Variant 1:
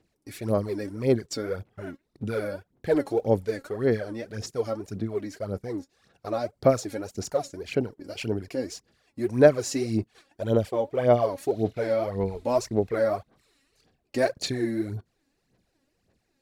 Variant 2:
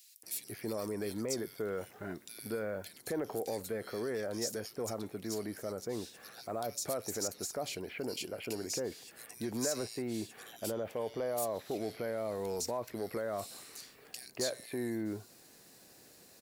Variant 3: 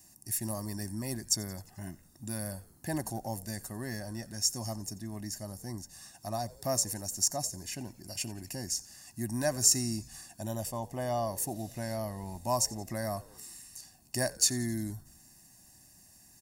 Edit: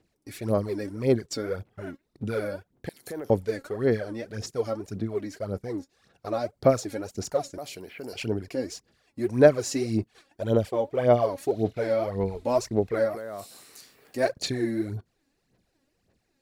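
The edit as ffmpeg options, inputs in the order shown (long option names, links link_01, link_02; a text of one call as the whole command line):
ffmpeg -i take0.wav -i take1.wav -filter_complex "[1:a]asplit=3[link_01][link_02][link_03];[0:a]asplit=4[link_04][link_05][link_06][link_07];[link_04]atrim=end=2.892[link_08];[link_01]atrim=start=2.888:end=3.302[link_09];[link_05]atrim=start=3.298:end=7.582[link_10];[link_02]atrim=start=7.578:end=8.132[link_11];[link_06]atrim=start=8.128:end=13.19[link_12];[link_03]atrim=start=13.03:end=14.25[link_13];[link_07]atrim=start=14.09[link_14];[link_08][link_09]acrossfade=duration=0.004:curve1=hsin:curve2=hsin[link_15];[link_15][link_10]acrossfade=duration=0.004:curve1=hsin:curve2=hsin[link_16];[link_16][link_11]acrossfade=duration=0.004:curve1=hsin:curve2=hsin[link_17];[link_17][link_12]acrossfade=duration=0.004:curve1=hsin:curve2=hsin[link_18];[link_18][link_13]acrossfade=duration=0.16:curve1=tri:curve2=tri[link_19];[link_19][link_14]acrossfade=duration=0.16:curve1=tri:curve2=tri" out.wav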